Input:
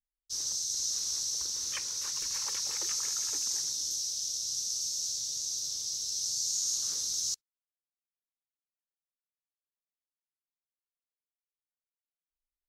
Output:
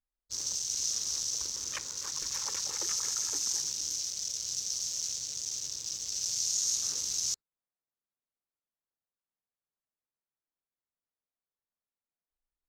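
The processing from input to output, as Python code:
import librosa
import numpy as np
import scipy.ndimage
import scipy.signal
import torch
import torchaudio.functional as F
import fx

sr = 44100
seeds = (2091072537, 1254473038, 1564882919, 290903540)

y = fx.wiener(x, sr, points=15)
y = y * 10.0 ** (3.5 / 20.0)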